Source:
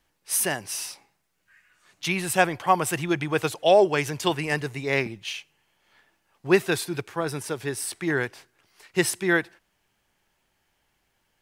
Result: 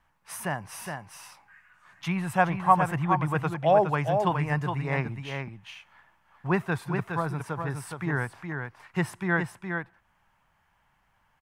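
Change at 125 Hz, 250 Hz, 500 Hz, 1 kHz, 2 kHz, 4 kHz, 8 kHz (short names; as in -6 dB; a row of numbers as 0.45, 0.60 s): +4.5, -2.0, -5.0, +1.5, -4.0, -12.0, -15.0 dB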